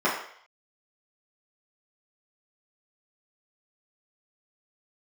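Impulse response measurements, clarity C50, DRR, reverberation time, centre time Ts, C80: 4.5 dB, -9.5 dB, 0.60 s, 39 ms, 8.0 dB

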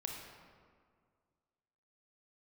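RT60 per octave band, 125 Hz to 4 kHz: 2.2, 2.1, 2.0, 1.9, 1.5, 1.1 s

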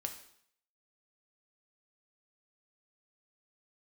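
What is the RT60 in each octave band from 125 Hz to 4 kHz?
0.60, 0.65, 0.65, 0.65, 0.65, 0.65 s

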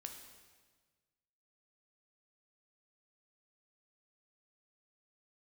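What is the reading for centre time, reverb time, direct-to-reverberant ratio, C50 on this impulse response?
33 ms, 1.5 s, 4.0 dB, 6.0 dB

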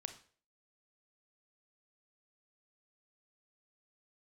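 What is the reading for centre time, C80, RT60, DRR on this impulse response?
10 ms, 15.5 dB, 0.45 s, 8.0 dB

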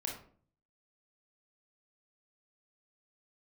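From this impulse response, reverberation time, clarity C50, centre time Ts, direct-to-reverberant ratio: 0.50 s, 5.0 dB, 30 ms, -1.0 dB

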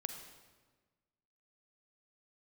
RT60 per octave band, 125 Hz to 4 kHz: 1.6, 1.6, 1.4, 1.3, 1.2, 1.1 s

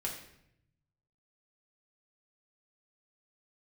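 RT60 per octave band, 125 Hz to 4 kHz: 1.6, 1.0, 0.80, 0.70, 0.75, 0.60 s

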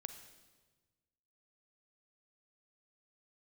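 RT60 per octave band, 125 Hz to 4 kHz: 1.8, 1.6, 1.4, 1.3, 1.2, 1.2 s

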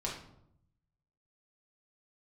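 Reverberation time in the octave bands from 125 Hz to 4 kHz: 1.3, 1.0, 0.80, 0.70, 0.50, 0.45 s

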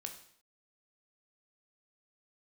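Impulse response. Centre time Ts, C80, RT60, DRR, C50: 16 ms, 12.5 dB, 0.60 s, 4.0 dB, 9.0 dB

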